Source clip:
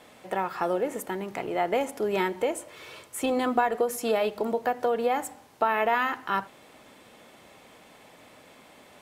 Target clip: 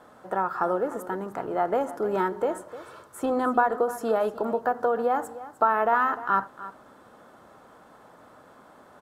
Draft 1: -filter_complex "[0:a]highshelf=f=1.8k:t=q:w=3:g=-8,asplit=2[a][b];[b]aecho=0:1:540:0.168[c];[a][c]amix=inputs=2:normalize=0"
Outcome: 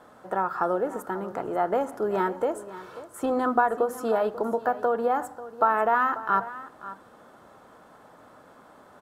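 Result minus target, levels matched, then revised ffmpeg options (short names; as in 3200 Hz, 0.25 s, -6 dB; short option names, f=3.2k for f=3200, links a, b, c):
echo 0.237 s late
-filter_complex "[0:a]highshelf=f=1.8k:t=q:w=3:g=-8,asplit=2[a][b];[b]aecho=0:1:303:0.168[c];[a][c]amix=inputs=2:normalize=0"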